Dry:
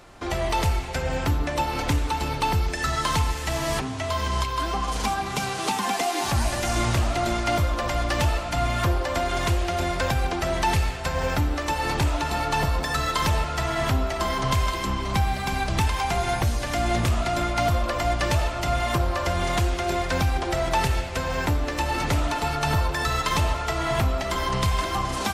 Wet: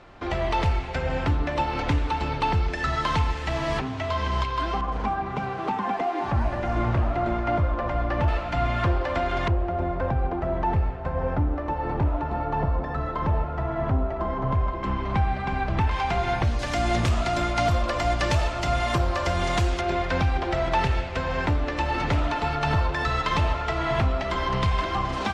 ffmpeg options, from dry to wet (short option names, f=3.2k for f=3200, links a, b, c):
-af "asetnsamples=n=441:p=0,asendcmd='4.81 lowpass f 1500;8.28 lowpass f 2700;9.48 lowpass f 1000;14.83 lowpass f 2000;15.91 lowpass f 3400;16.59 lowpass f 6900;19.81 lowpass f 3500',lowpass=3.4k"